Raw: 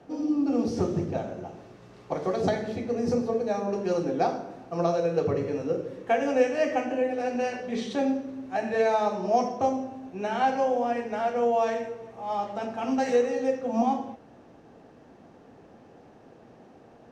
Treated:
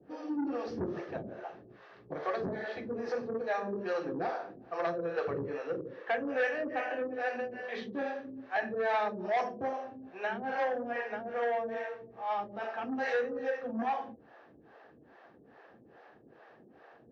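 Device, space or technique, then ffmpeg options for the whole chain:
guitar amplifier with harmonic tremolo: -filter_complex "[0:a]acrossover=split=440[link_01][link_02];[link_01]aeval=exprs='val(0)*(1-1/2+1/2*cos(2*PI*2.4*n/s))':channel_layout=same[link_03];[link_02]aeval=exprs='val(0)*(1-1/2-1/2*cos(2*PI*2.4*n/s))':channel_layout=same[link_04];[link_03][link_04]amix=inputs=2:normalize=0,asoftclip=type=tanh:threshold=-25.5dB,highpass=77,equalizer=frequency=100:width_type=q:width=4:gain=-9,equalizer=frequency=170:width_type=q:width=4:gain=-6,equalizer=frequency=250:width_type=q:width=4:gain=-5,equalizer=frequency=1200:width_type=q:width=4:gain=3,equalizer=frequency=1700:width_type=q:width=4:gain=10,lowpass=frequency=4400:width=0.5412,lowpass=frequency=4400:width=1.3066"

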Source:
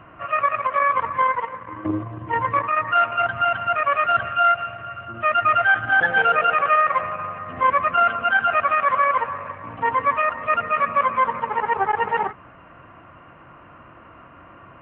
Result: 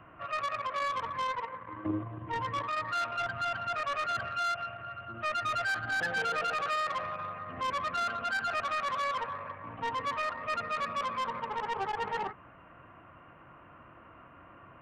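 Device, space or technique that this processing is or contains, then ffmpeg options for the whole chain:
one-band saturation: -filter_complex "[0:a]acrossover=split=400|2600[link_01][link_02][link_03];[link_02]asoftclip=type=tanh:threshold=-22.5dB[link_04];[link_01][link_04][link_03]amix=inputs=3:normalize=0,volume=-8dB"

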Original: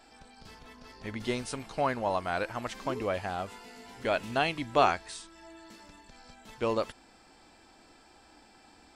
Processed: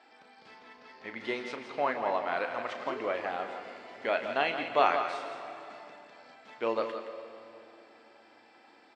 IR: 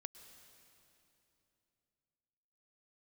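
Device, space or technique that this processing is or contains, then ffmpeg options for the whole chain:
station announcement: -filter_complex "[0:a]highpass=330,lowpass=3500,equalizer=frequency=2000:width_type=o:width=0.33:gain=4.5,aecho=1:1:34.99|169.1:0.316|0.355[link_01];[1:a]atrim=start_sample=2205[link_02];[link_01][link_02]afir=irnorm=-1:irlink=0,asettb=1/sr,asplit=3[link_03][link_04][link_05];[link_03]atrim=end=1.424[link_06];[link_04]atrim=start=1.42:end=2.37,asetpts=PTS-STARTPTS,afade=type=in:duration=0.004:curve=qsin,afade=type=out:start_time=0.946:duration=0.004:curve=qsin,lowpass=7000[link_07];[link_05]atrim=start=2.366[link_08];[link_06][link_07]acrossfade=duration=0.004:curve1=hsin:curve2=qsin[link_09];[link_09][link_08]acrossfade=duration=0.004:curve1=qsin:curve2=hsin,volume=4.5dB"

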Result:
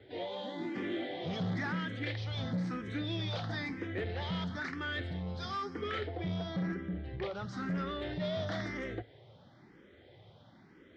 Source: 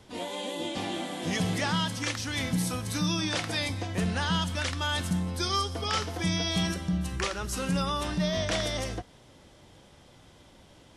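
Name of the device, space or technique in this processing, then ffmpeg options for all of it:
barber-pole phaser into a guitar amplifier: -filter_complex "[0:a]asettb=1/sr,asplit=3[link_01][link_02][link_03];[link_01]atrim=end=6.074[link_04];[link_02]atrim=start=6.07:end=7.35,asetpts=PTS-STARTPTS,afade=type=in:duration=0.004:curve=qsin,afade=type=out:start_time=1.276:duration=0.004:curve=qsin,lowpass=frequency=1700:poles=1[link_05];[link_03]atrim=start=7.346[link_06];[link_04][link_05]acrossfade=duration=0.004:curve1=hsin:curve2=qsin[link_07];[link_07][link_06]acrossfade=duration=0.004:curve1=qsin:curve2=hsin,asplit=2[link_08][link_09];[link_09]afreqshift=1[link_10];[link_08][link_10]amix=inputs=2:normalize=1,asoftclip=type=tanh:threshold=-30dB,highpass=100,equalizer=frequency=110:width_type=q:width=4:gain=6,equalizer=frequency=390:width_type=q:width=4:gain=5,equalizer=frequency=1000:width_type=q:width=4:gain=-7,equalizer=frequency=1900:width_type=q:width=4:gain=4,equalizer=frequency=2700:width_type=q:width=4:gain=-9,lowpass=frequency=3700:width=0.5412,lowpass=frequency=3700:width=1.3066"

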